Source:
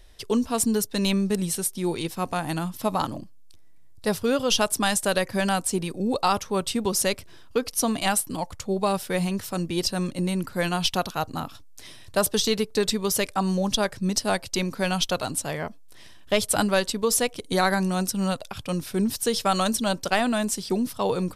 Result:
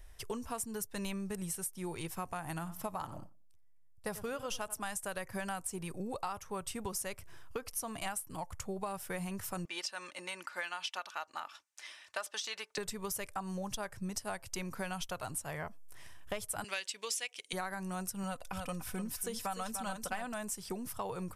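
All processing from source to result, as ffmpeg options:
-filter_complex "[0:a]asettb=1/sr,asplit=3[s0][s1][s2];[s0]atrim=end=2.494[s3];[s1]atrim=start=2.49:end=4.85,asetpts=PTS-STARTPTS,afade=t=in:d=0.004:c=qsin,afade=t=out:st=2.356:d=0.004:c=qsin,asplit=2[s4][s5];[s5]adelay=91,lowpass=f=1900:p=1,volume=0.178,asplit=2[s6][s7];[s7]adelay=91,lowpass=f=1900:p=1,volume=0.33,asplit=2[s8][s9];[s9]adelay=91,lowpass=f=1900:p=1,volume=0.33[s10];[s4][s6][s8][s10]amix=inputs=4:normalize=0,atrim=end_sample=104076,agate=range=0.0224:threshold=0.0178:ratio=3:release=100:detection=peak[s11];[s2]atrim=start=4.846[s12];[s3][s11]acrossfade=d=0.004:c1=hsin:c2=qsin[s13];[s13][s12]acrossfade=d=0.004:c1=qsin:c2=hsin,asettb=1/sr,asplit=3[s14][s15][s16];[s14]atrim=end=9.654[s17];[s15]atrim=start=9.65:end=12.78,asetpts=PTS-STARTPTS,afade=t=in:d=0.004:c=qsin,afade=t=out:st=3.126:d=0.004:c=qsin,highpass=460,lowpass=4400,tiltshelf=f=1100:g=-7.5,aecho=1:1:3.4:0.34,atrim=end_sample=138033[s18];[s16]atrim=start=12.776[s19];[s17][s18]acrossfade=d=0.004:c1=hsin:c2=qsin[s20];[s20][s19]acrossfade=d=0.004:c1=qsin:c2=hsin,asettb=1/sr,asplit=3[s21][s22][s23];[s21]atrim=end=16.644[s24];[s22]atrim=start=16.64:end=17.53,asetpts=PTS-STARTPTS,afade=t=in:d=0.004:c=qsin,afade=t=out:st=0.886:d=0.004:c=qsin,highpass=410,lowpass=6400,highshelf=f=1700:t=q:w=1.5:g=13[s25];[s23]atrim=start=17.526[s26];[s24][s25]acrossfade=d=0.004:c1=hsin:c2=qsin[s27];[s27][s26]acrossfade=d=0.004:c1=qsin:c2=hsin,asettb=1/sr,asplit=3[s28][s29][s30];[s28]atrim=end=18.234[s31];[s29]atrim=start=18.23:end=20.34,asetpts=PTS-STARTPTS,afade=t=in:d=0.004:c=qsin,afade=t=out:st=2.106:d=0.004:c=qsin,aecho=1:1:4:0.47,atrim=end_sample=93051,aecho=1:1:296:0.398,atrim=end_sample=93051[s32];[s30]atrim=start=20.336[s33];[s31][s32]acrossfade=d=0.004:c1=hsin:c2=qsin[s34];[s34][s33]acrossfade=d=0.004:c1=qsin:c2=hsin,equalizer=f=250:t=o:w=1:g=-11,equalizer=f=500:t=o:w=1:g=-5,equalizer=f=4000:t=o:w=1:g=-12,acompressor=threshold=0.0178:ratio=6,volume=0.891"

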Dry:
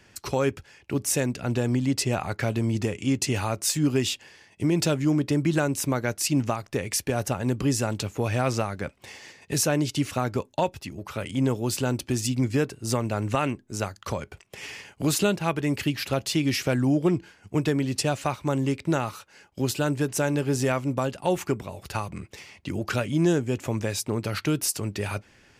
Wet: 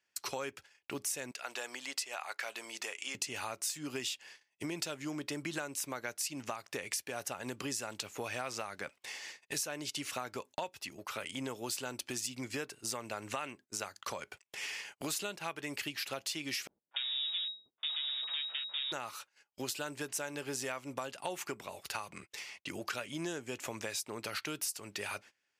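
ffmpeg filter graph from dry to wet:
-filter_complex "[0:a]asettb=1/sr,asplit=3[s0][s1][s2];[s0]atrim=end=1.314[s3];[s1]atrim=start=1.31:end=3.15,asetpts=PTS-STARTPTS,afade=t=in:d=0.004:c=qsin,afade=t=out:st=1.836:d=0.004:c=qsin,highpass=680,agate=range=0.0224:threshold=0.00282:ratio=3:release=100:detection=peak[s4];[s2]atrim=start=3.146[s5];[s3][s4]acrossfade=d=0.004:c1=hsin:c2=qsin[s6];[s6][s5]acrossfade=d=0.004:c1=qsin:c2=hsin,asettb=1/sr,asplit=3[s7][s8][s9];[s7]atrim=end=16.674[s10];[s8]atrim=start=16.67:end=18.92,asetpts=PTS-STARTPTS,afade=t=in:d=0.004:c=qsin,afade=t=out:st=2.246:d=0.004:c=qsin,acrusher=bits=3:dc=4:mix=0:aa=0.000001,lowpass=f=3200:t=q:w=0.5098,lowpass=f=3200:t=q:w=0.6013,lowpass=f=3200:t=q:w=0.9,lowpass=f=3200:t=q:w=2.563,afreqshift=-3800,acrossover=split=330|1200[s11][s12][s13];[s12]adelay=240[s14];[s13]adelay=290[s15];[s11][s14][s15]amix=inputs=3:normalize=0,atrim=end_sample=99225[s16];[s9]atrim=start=18.916[s17];[s10][s16]acrossfade=d=0.004:c1=hsin:c2=qsin[s18];[s18][s17]acrossfade=d=0.004:c1=qsin:c2=hsin,highpass=f=1200:p=1,agate=range=0.0708:threshold=0.00316:ratio=16:detection=peak,acompressor=threshold=0.0141:ratio=4,volume=1.12"

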